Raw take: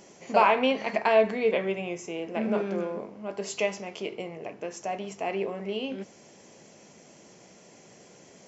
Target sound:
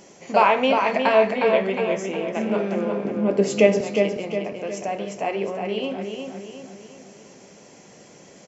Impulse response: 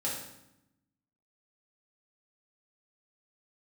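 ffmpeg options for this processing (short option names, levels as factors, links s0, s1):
-filter_complex "[0:a]asettb=1/sr,asplit=3[s0][s1][s2];[s0]atrim=end=3.054[s3];[s1]atrim=start=3.05:end=3.81,asetpts=PTS-STARTPTS,afade=t=in:d=0.004:c=qsin,afade=t=out:st=0.756:d=0.004:c=qsin,equalizer=f=125:t=o:w=1:g=12,equalizer=f=250:t=o:w=1:g=11,equalizer=f=500:t=o:w=1:g=9,equalizer=f=1000:t=o:w=1:g=-4,equalizer=f=2000:t=o:w=1:g=4[s4];[s2]atrim=start=3.806[s5];[s3][s4]acrossfade=d=0.004:c1=hsin:c2=qsin[s6];[s6][s5]acrossfade=d=0.004:c1=qsin:c2=hsin,asplit=2[s7][s8];[s8]adelay=360,lowpass=f=4700:p=1,volume=0.562,asplit=2[s9][s10];[s10]adelay=360,lowpass=f=4700:p=1,volume=0.47,asplit=2[s11][s12];[s12]adelay=360,lowpass=f=4700:p=1,volume=0.47,asplit=2[s13][s14];[s14]adelay=360,lowpass=f=4700:p=1,volume=0.47,asplit=2[s15][s16];[s16]adelay=360,lowpass=f=4700:p=1,volume=0.47,asplit=2[s17][s18];[s18]adelay=360,lowpass=f=4700:p=1,volume=0.47[s19];[s7][s9][s11][s13][s15][s17][s19]amix=inputs=7:normalize=0,asplit=2[s20][s21];[1:a]atrim=start_sample=2205[s22];[s21][s22]afir=irnorm=-1:irlink=0,volume=0.112[s23];[s20][s23]amix=inputs=2:normalize=0,volume=1.41"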